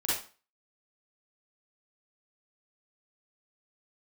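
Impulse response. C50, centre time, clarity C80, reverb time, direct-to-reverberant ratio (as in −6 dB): −2.0 dB, 57 ms, 7.0 dB, 0.35 s, −8.5 dB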